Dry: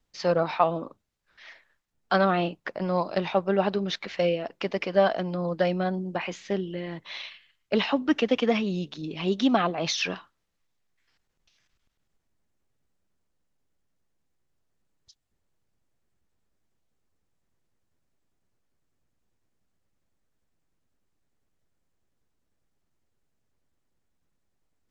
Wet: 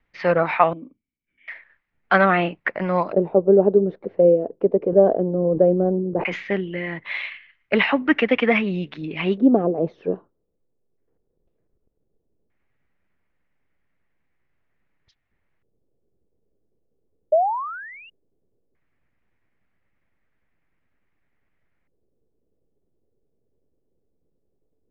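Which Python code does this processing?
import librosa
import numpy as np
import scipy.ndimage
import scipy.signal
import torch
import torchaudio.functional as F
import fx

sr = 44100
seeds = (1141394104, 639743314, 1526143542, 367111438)

y = fx.formant_cascade(x, sr, vowel='i', at=(0.73, 1.48))
y = fx.spec_paint(y, sr, seeds[0], shape='rise', start_s=17.32, length_s=0.78, low_hz=600.0, high_hz=2900.0, level_db=-18.0)
y = fx.filter_lfo_lowpass(y, sr, shape='square', hz=0.16, low_hz=450.0, high_hz=2100.0, q=3.4)
y = fx.sustainer(y, sr, db_per_s=95.0, at=(4.79, 6.51))
y = y * 10.0 ** (4.0 / 20.0)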